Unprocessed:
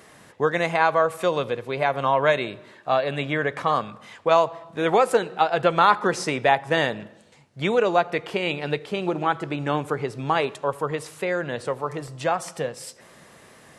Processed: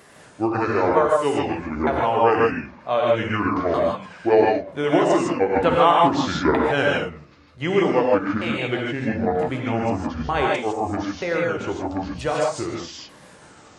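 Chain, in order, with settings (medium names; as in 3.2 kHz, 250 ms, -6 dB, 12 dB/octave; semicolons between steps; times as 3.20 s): sawtooth pitch modulation -11 st, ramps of 935 ms; gated-style reverb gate 180 ms rising, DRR -2 dB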